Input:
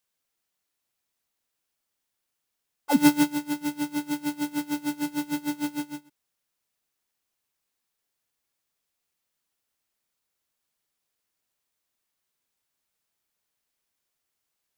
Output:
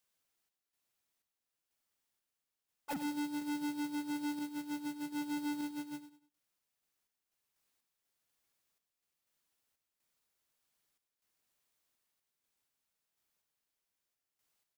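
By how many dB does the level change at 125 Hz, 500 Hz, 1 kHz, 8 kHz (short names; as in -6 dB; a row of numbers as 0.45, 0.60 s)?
-17.5, -14.5, -11.5, -14.5 dB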